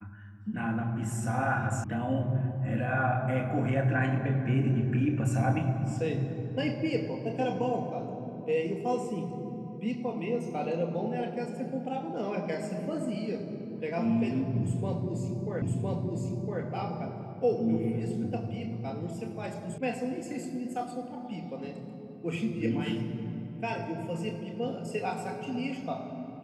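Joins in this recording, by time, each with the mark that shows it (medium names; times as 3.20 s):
1.84 s: sound stops dead
15.62 s: repeat of the last 1.01 s
19.78 s: sound stops dead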